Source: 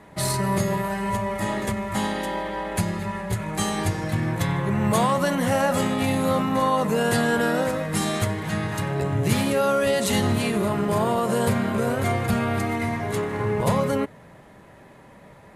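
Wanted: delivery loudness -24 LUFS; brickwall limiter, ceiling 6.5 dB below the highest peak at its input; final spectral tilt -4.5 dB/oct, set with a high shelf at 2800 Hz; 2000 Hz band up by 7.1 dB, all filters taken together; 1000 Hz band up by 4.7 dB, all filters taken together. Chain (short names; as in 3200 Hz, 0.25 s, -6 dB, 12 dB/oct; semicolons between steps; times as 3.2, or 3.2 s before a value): bell 1000 Hz +4 dB; bell 2000 Hz +8.5 dB; high shelf 2800 Hz -3 dB; gain -1.5 dB; limiter -14 dBFS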